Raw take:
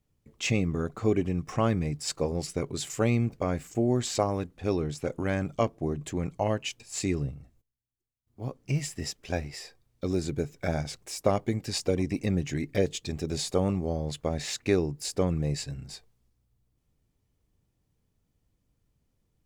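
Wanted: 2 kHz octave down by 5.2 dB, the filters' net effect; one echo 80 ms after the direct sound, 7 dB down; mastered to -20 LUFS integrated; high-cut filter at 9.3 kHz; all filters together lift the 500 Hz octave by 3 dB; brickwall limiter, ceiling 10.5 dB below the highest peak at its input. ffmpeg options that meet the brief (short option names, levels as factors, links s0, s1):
-af "lowpass=9300,equalizer=f=500:t=o:g=4,equalizer=f=2000:t=o:g=-7,alimiter=limit=0.112:level=0:latency=1,aecho=1:1:80:0.447,volume=3.35"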